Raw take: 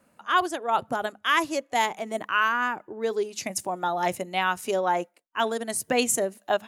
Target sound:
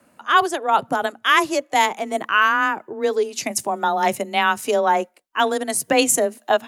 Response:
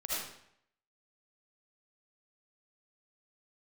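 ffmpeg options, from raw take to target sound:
-af "afreqshift=20,volume=2.11"

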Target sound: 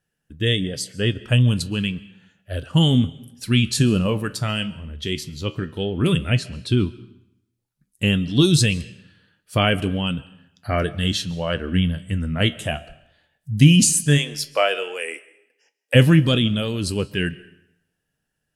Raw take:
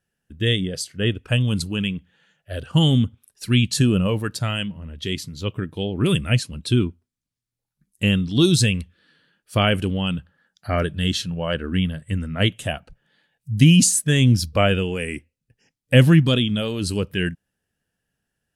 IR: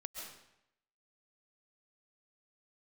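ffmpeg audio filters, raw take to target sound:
-filter_complex "[0:a]asettb=1/sr,asplit=3[s0][s1][s2];[s0]atrim=end=6.094[s3];[s1]atrim=start=6.09:end=6.79,asetpts=PTS-STARTPTS,afade=t=in:d=0.004:c=qsin,afade=t=out:st=0.696:d=0.004:c=qsin,highshelf=f=6200:g=-9[s4];[s2]atrim=start=6.786[s5];[s3][s4]acrossfade=d=0.004:c1=hsin:c2=qsin[s6];[s6][s5]acrossfade=d=0.004:c1=qsin:c2=hsin,asplit=3[s7][s8][s9];[s7]afade=t=out:st=14.17:d=0.02[s10];[s8]highpass=f=450:w=0.5412,highpass=f=450:w=1.3066,afade=t=in:st=14.17:d=0.02,afade=t=out:st=15.94:d=0.02[s11];[s9]afade=t=in:st=15.94:d=0.02[s12];[s10][s11][s12]amix=inputs=3:normalize=0,flanger=delay=6.5:depth=7.4:regen=72:speed=0.11:shape=sinusoidal,asplit=2[s13][s14];[1:a]atrim=start_sample=2205[s15];[s14][s15]afir=irnorm=-1:irlink=0,volume=0.211[s16];[s13][s16]amix=inputs=2:normalize=0,volume=1.58"

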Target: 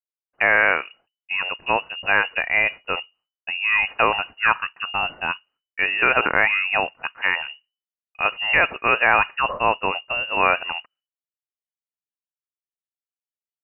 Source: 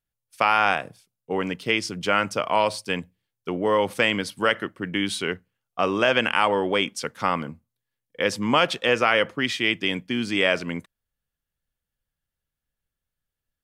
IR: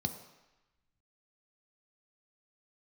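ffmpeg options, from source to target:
-af "adynamicequalizer=threshold=0.02:dfrequency=2000:dqfactor=1.2:tfrequency=2000:tqfactor=1.2:attack=5:release=100:ratio=0.375:range=3.5:mode=boostabove:tftype=bell,agate=range=0.0224:threshold=0.00316:ratio=3:detection=peak,lowpass=f=2600:t=q:w=0.5098,lowpass=f=2600:t=q:w=0.6013,lowpass=f=2600:t=q:w=0.9,lowpass=f=2600:t=q:w=2.563,afreqshift=-3000"

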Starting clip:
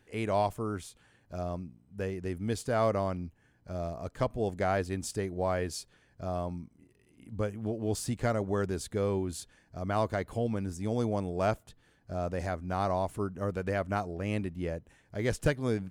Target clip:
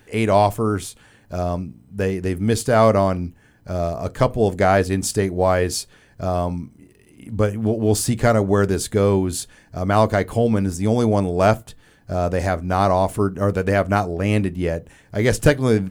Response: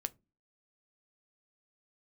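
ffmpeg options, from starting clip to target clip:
-filter_complex "[0:a]asplit=2[s0][s1];[1:a]atrim=start_sample=2205,afade=t=out:st=0.14:d=0.01,atrim=end_sample=6615,highshelf=f=11000:g=9[s2];[s1][s2]afir=irnorm=-1:irlink=0,volume=2.66[s3];[s0][s3]amix=inputs=2:normalize=0,volume=1.26"

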